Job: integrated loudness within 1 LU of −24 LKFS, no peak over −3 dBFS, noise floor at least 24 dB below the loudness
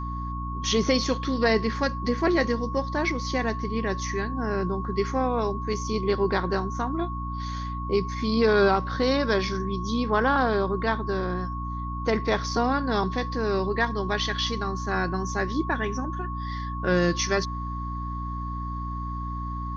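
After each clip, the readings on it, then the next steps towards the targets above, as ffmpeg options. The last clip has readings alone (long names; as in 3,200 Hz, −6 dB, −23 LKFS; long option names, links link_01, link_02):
mains hum 60 Hz; hum harmonics up to 300 Hz; level of the hum −30 dBFS; interfering tone 1,100 Hz; level of the tone −34 dBFS; integrated loudness −26.5 LKFS; sample peak −9.0 dBFS; target loudness −24.0 LKFS
→ -af "bandreject=frequency=60:width_type=h:width=6,bandreject=frequency=120:width_type=h:width=6,bandreject=frequency=180:width_type=h:width=6,bandreject=frequency=240:width_type=h:width=6,bandreject=frequency=300:width_type=h:width=6"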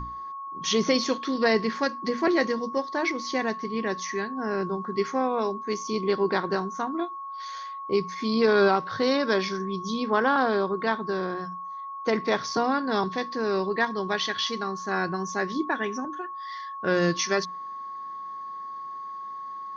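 mains hum none found; interfering tone 1,100 Hz; level of the tone −34 dBFS
→ -af "bandreject=frequency=1100:width=30"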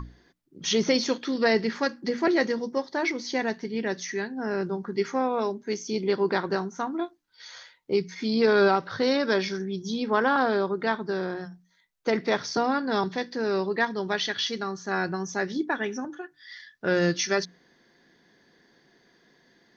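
interfering tone none found; integrated loudness −27.0 LKFS; sample peak −10.0 dBFS; target loudness −24.0 LKFS
→ -af "volume=3dB"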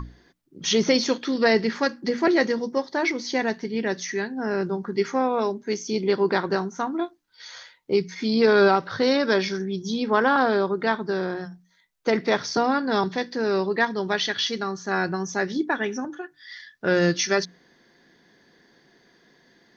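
integrated loudness −24.0 LKFS; sample peak −7.0 dBFS; background noise floor −62 dBFS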